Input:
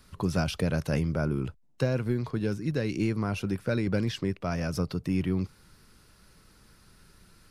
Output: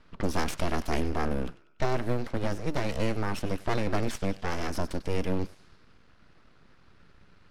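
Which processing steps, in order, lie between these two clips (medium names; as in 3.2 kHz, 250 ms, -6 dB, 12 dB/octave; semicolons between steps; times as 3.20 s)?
thinning echo 96 ms, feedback 54%, high-pass 500 Hz, level -15.5 dB; full-wave rectifier; level-controlled noise filter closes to 2.7 kHz, open at -26 dBFS; trim +2 dB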